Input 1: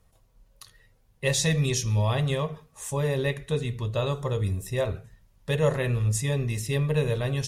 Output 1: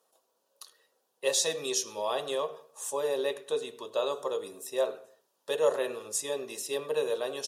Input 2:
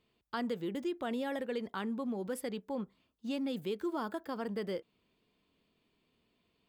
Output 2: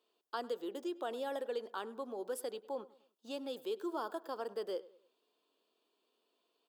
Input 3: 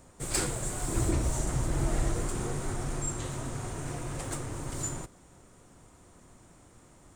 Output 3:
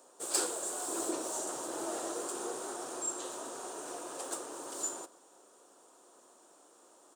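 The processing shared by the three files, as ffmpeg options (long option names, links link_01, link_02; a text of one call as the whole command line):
ffmpeg -i in.wav -filter_complex "[0:a]highpass=frequency=360:width=0.5412,highpass=frequency=360:width=1.3066,equalizer=frequency=2100:width_type=o:width=0.5:gain=-14,asplit=2[link_01][link_02];[link_02]adelay=101,lowpass=frequency=3100:poles=1,volume=-19dB,asplit=2[link_03][link_04];[link_04]adelay=101,lowpass=frequency=3100:poles=1,volume=0.4,asplit=2[link_05][link_06];[link_06]adelay=101,lowpass=frequency=3100:poles=1,volume=0.4[link_07];[link_01][link_03][link_05][link_07]amix=inputs=4:normalize=0" out.wav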